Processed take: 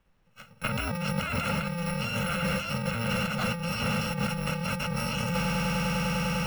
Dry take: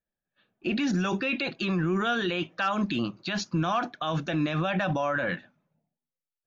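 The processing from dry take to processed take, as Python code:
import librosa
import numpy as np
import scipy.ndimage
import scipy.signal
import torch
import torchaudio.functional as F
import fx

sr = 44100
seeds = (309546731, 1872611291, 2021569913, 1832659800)

y = fx.bit_reversed(x, sr, seeds[0], block=128)
y = fx.bass_treble(y, sr, bass_db=-1, treble_db=-15)
y = fx.echo_swell(y, sr, ms=100, loudest=8, wet_db=-17.5)
y = fx.over_compress(y, sr, threshold_db=-42.0, ratio=-1.0)
y = fx.leveller(y, sr, passes=2)
y = fx.high_shelf(y, sr, hz=3900.0, db=-11.0)
y = fx.band_squash(y, sr, depth_pct=70)
y = y * librosa.db_to_amplitude(6.5)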